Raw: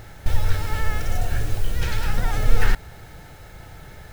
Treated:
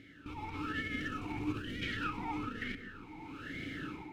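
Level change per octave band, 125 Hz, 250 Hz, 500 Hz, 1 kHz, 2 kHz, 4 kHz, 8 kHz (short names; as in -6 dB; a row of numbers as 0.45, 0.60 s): -18.5 dB, -1.0 dB, -13.0 dB, -8.0 dB, -7.5 dB, -9.0 dB, n/a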